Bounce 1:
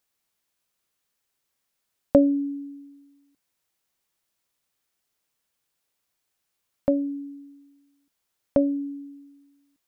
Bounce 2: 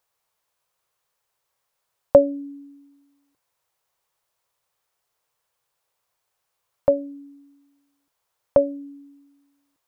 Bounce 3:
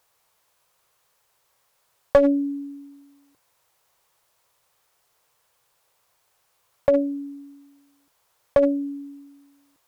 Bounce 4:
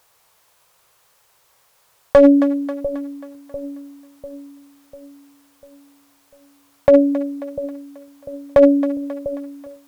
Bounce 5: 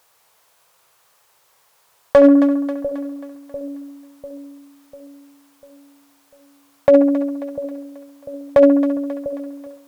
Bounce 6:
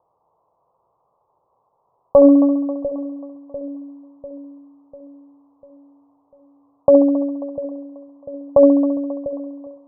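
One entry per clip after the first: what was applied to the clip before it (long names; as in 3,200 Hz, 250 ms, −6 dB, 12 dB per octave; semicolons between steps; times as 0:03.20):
graphic EQ with 10 bands 125 Hz +5 dB, 250 Hz −11 dB, 500 Hz +7 dB, 1,000 Hz +8 dB
in parallel at +1 dB: compressor whose output falls as the input rises −24 dBFS, ratio −0.5; on the sum: asymmetric clip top −11 dBFS; level −1 dB
echo with a time of its own for lows and highs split 560 Hz, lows 696 ms, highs 269 ms, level −14.5 dB; boost into a limiter +10 dB; level −1 dB
low-shelf EQ 89 Hz −10 dB; on a send: feedback echo with a band-pass in the loop 68 ms, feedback 65%, band-pass 890 Hz, level −7.5 dB
Butterworth low-pass 1,100 Hz 72 dB per octave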